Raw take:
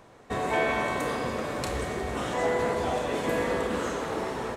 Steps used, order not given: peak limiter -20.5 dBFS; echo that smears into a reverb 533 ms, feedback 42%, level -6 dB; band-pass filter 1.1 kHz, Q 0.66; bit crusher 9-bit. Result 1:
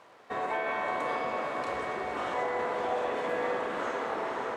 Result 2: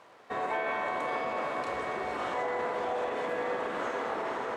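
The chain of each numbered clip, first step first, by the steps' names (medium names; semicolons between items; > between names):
peak limiter > echo that smears into a reverb > bit crusher > band-pass filter; echo that smears into a reverb > bit crusher > peak limiter > band-pass filter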